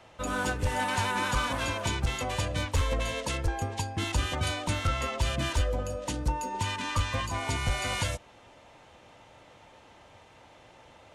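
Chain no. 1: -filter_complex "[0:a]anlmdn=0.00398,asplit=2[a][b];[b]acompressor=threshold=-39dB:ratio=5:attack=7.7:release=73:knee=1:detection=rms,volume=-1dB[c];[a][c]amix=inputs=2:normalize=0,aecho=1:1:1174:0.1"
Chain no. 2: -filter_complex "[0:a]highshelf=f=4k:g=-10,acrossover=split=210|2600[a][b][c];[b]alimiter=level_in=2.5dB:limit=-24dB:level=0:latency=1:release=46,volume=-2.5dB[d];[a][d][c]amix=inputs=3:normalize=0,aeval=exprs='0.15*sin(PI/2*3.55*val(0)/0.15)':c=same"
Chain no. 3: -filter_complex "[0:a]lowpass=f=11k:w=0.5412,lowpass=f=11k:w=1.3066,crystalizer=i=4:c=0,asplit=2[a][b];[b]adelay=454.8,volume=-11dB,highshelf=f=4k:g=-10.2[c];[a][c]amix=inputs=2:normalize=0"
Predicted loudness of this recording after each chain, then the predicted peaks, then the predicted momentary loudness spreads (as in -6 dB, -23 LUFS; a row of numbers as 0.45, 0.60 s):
-28.5, -21.5, -25.5 LUFS; -16.5, -16.5, -9.5 dBFS; 5, 20, 6 LU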